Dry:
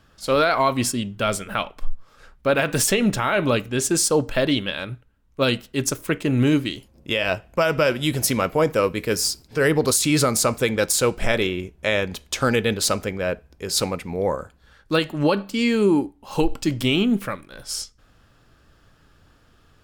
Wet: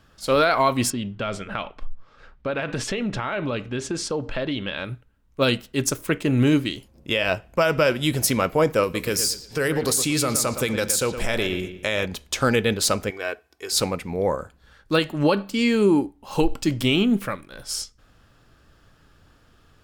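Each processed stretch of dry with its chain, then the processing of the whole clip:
0.90–4.85 s: low-pass 4 kHz + compression 4:1, threshold -23 dBFS
8.83–12.06 s: treble shelf 4 kHz +7.5 dB + compression 4:1, threshold -19 dBFS + feedback echo behind a low-pass 116 ms, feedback 31%, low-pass 3.9 kHz, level -9.5 dB
13.10–13.72 s: high-pass 820 Hz 6 dB/octave + comb 2.7 ms
whole clip: none

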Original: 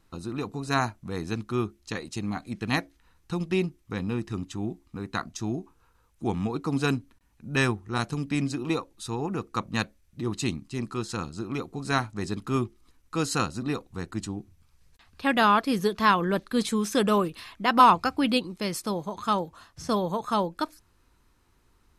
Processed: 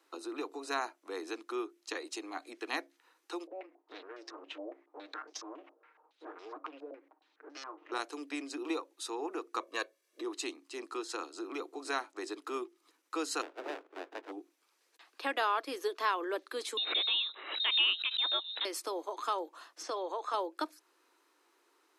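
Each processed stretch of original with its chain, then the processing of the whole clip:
3.47–7.92 s: comb filter that takes the minimum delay 6.5 ms + compression 16:1, threshold -41 dBFS + step-sequenced low-pass 7.2 Hz 600–5300 Hz
9.60–10.23 s: peaking EQ 280 Hz +9 dB 0.7 oct + comb 1.8 ms, depth 83%
13.41–14.31 s: spectral peaks clipped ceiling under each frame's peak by 28 dB + steep low-pass 1.8 kHz + sliding maximum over 33 samples
16.77–18.65 s: frequency inversion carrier 3.9 kHz + swell ahead of each attack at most 110 dB/s
19.83–20.34 s: compression 2:1, threshold -29 dBFS + band-pass 340–6500 Hz
whole clip: compression 2:1, threshold -35 dBFS; steep high-pass 300 Hz 72 dB/octave; treble shelf 8.7 kHz -4 dB

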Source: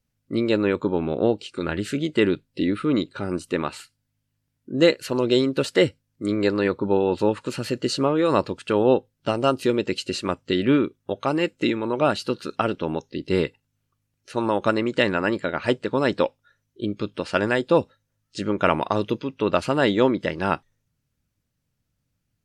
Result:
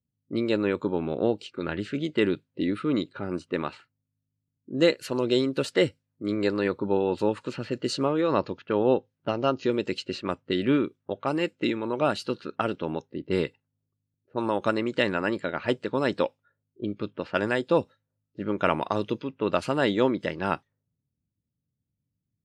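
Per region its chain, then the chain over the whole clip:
8.21–9.72 s: brick-wall FIR low-pass 7.1 kHz + treble shelf 4.9 kHz -6 dB
whole clip: level-controlled noise filter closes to 340 Hz, open at -19.5 dBFS; high-pass 80 Hz; trim -4 dB

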